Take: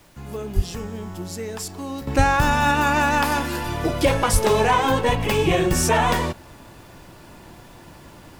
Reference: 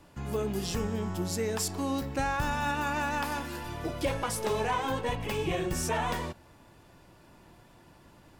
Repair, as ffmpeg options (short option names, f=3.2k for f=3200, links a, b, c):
-filter_complex "[0:a]asplit=3[a][b][c];[a]afade=t=out:st=0.55:d=0.02[d];[b]highpass=f=140:w=0.5412,highpass=f=140:w=1.3066,afade=t=in:st=0.55:d=0.02,afade=t=out:st=0.67:d=0.02[e];[c]afade=t=in:st=0.67:d=0.02[f];[d][e][f]amix=inputs=3:normalize=0,asplit=3[g][h][i];[g]afade=t=out:st=2.17:d=0.02[j];[h]highpass=f=140:w=0.5412,highpass=f=140:w=1.3066,afade=t=in:st=2.17:d=0.02,afade=t=out:st=2.29:d=0.02[k];[i]afade=t=in:st=2.29:d=0.02[l];[j][k][l]amix=inputs=3:normalize=0,asplit=3[m][n][o];[m]afade=t=out:st=4.32:d=0.02[p];[n]highpass=f=140:w=0.5412,highpass=f=140:w=1.3066,afade=t=in:st=4.32:d=0.02,afade=t=out:st=4.44:d=0.02[q];[o]afade=t=in:st=4.44:d=0.02[r];[p][q][r]amix=inputs=3:normalize=0,agate=range=-21dB:threshold=-37dB,asetnsamples=n=441:p=0,asendcmd='2.07 volume volume -11.5dB',volume=0dB"